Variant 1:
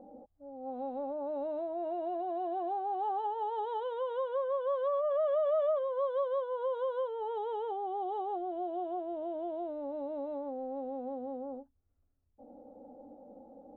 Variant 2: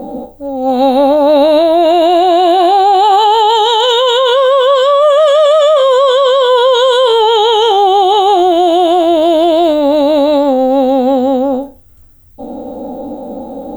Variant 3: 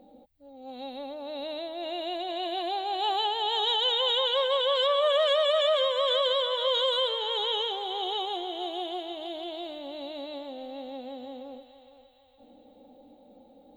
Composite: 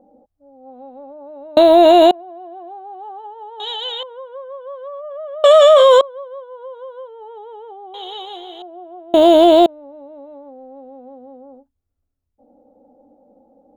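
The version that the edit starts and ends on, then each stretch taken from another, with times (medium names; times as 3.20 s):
1
1.57–2.11 s: from 2
3.60–4.03 s: from 3
5.44–6.01 s: from 2
7.94–8.62 s: from 3
9.14–9.66 s: from 2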